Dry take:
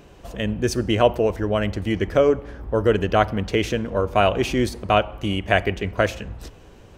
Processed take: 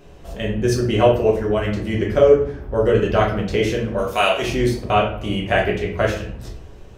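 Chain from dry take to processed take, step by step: 3.98–4.42 s: tilt EQ +4.5 dB/octave; simulated room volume 64 m³, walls mixed, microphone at 1 m; trim -3.5 dB

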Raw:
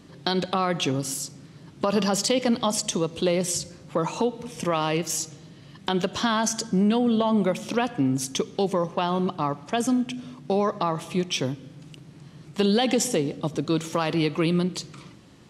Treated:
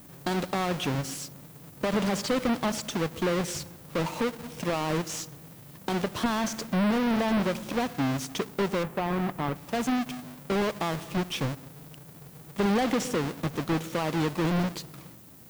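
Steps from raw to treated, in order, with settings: square wave that keeps the level; 8.83–9.56 s: low-pass 2.3 kHz 12 dB/octave; added noise violet -46 dBFS; slew-rate limiter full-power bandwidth 370 Hz; trim -7.5 dB

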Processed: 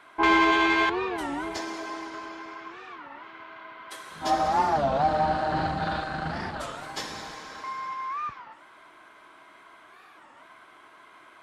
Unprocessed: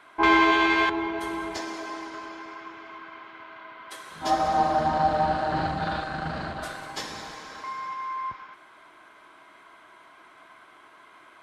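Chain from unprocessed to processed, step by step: saturation -11.5 dBFS, distortion -22 dB; warped record 33 1/3 rpm, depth 250 cents

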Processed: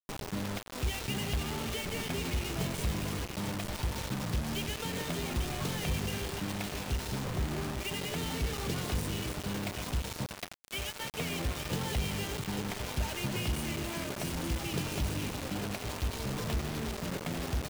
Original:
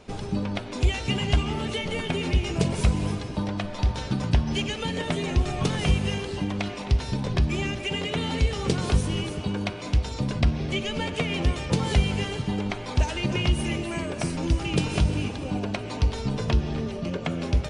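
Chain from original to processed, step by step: 10.26–11.14 s: Bessel high-pass 640 Hz, order 6; saturation -18 dBFS, distortion -13 dB; 7.24–7.80 s: steep low-pass 1.5 kHz 72 dB/octave; feedback delay 846 ms, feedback 39%, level -10 dB; bit crusher 5-bit; trim -8 dB

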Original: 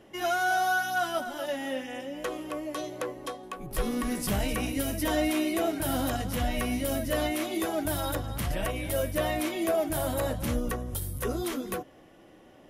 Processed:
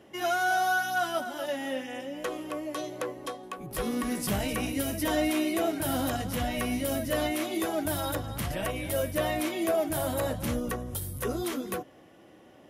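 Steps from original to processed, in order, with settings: high-pass 70 Hz

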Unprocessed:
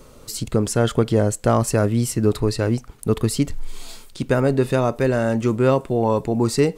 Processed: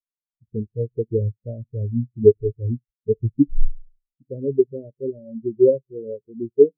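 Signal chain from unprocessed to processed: local Wiener filter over 41 samples; in parallel at -10.5 dB: integer overflow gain 8 dB; on the sum: resonant low shelf 740 Hz +8.5 dB, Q 1.5; on a send at -17.5 dB: reverberation RT60 0.85 s, pre-delay 3 ms; on the sum: gain riding 2 s; spectral contrast expander 4:1; trim -5.5 dB

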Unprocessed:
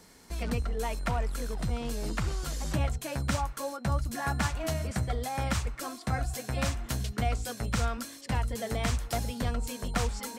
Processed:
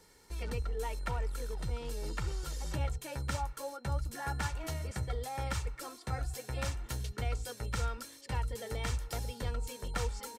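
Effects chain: comb 2.2 ms, depth 52%; trim -7 dB

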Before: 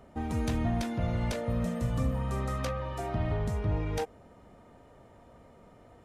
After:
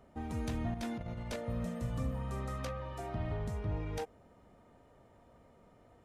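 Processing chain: 0.74–1.36 s: compressor with a negative ratio -32 dBFS, ratio -0.5; trim -6.5 dB

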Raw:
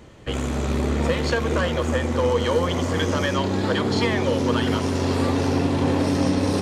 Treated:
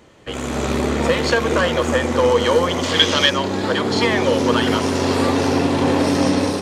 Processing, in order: 2.83–3.30 s: peaking EQ 3.5 kHz +14 dB 1.3 oct; level rider gain up to 9 dB; bass shelf 160 Hz -11 dB

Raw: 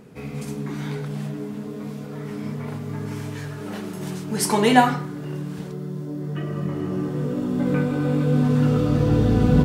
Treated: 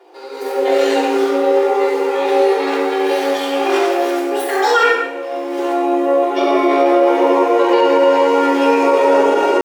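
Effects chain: treble shelf 3.5 kHz -3 dB; hum notches 60/120/180/240/300/360/420/480 Hz; level rider gain up to 14.5 dB; pitch shift +11 st; steep high-pass 350 Hz 48 dB/octave; treble shelf 7.1 kHz -8 dB; reverberation RT60 0.95 s, pre-delay 3 ms, DRR -10.5 dB; loudness maximiser -4 dB; trim -2.5 dB

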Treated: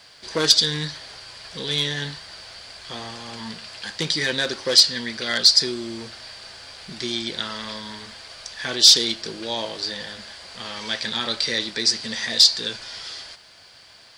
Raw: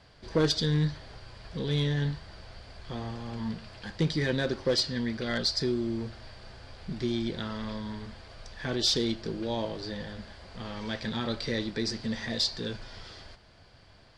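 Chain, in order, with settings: tilt EQ +4 dB/octave; trim +6 dB

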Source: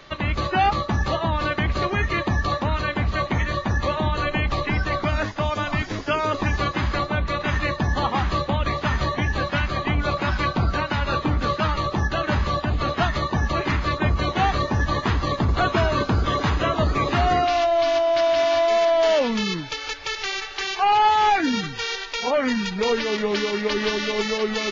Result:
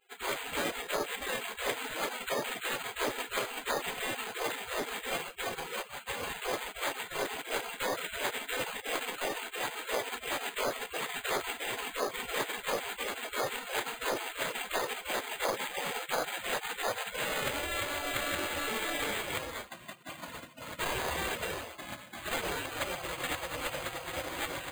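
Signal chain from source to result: tracing distortion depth 0.092 ms; spectral gate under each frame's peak -25 dB weak; peaking EQ 2.8 kHz +7.5 dB 0.26 oct; band-stop 2.6 kHz, Q 15; dynamic bell 500 Hz, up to +7 dB, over -57 dBFS, Q 1.8; compression, threshold -36 dBFS, peak gain reduction 10 dB; careless resampling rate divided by 8×, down filtered, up hold; trim +9 dB

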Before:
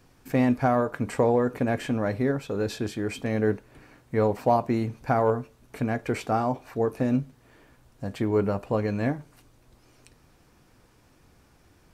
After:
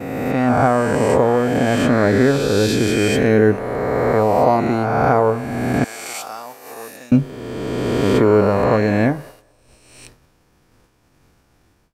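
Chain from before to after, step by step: reverse spectral sustain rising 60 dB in 2.29 s; 5.84–7.12 s: differentiator; level rider gain up to 14 dB; feedback echo behind a band-pass 207 ms, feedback 61%, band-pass 900 Hz, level -21.5 dB; expander -30 dBFS; trim -1 dB

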